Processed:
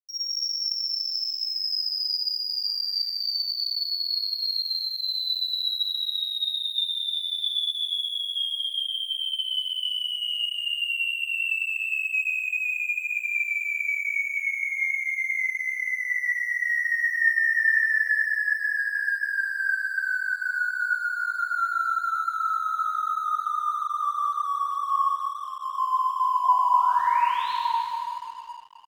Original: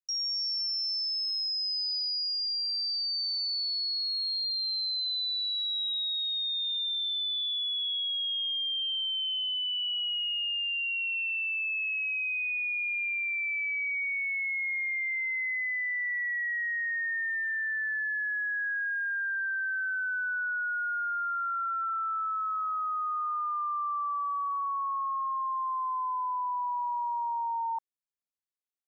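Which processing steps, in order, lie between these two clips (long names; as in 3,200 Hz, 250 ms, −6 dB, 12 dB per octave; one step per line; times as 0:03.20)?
Butterworth band-reject 750 Hz, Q 2.4
0:25.01–0:25.73: comb filter 4.2 ms, depth 88%
0:26.43–0:27.53: sound drawn into the spectrogram rise 690–4,400 Hz −41 dBFS
hollow resonant body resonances 1,000/1,800 Hz, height 7 dB, ringing for 45 ms
echo with shifted repeats 173 ms, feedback 33%, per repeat +42 Hz, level −5 dB
dense smooth reverb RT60 3.1 s, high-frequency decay 0.6×, DRR −9 dB
dead-zone distortion −41 dBFS
level −5.5 dB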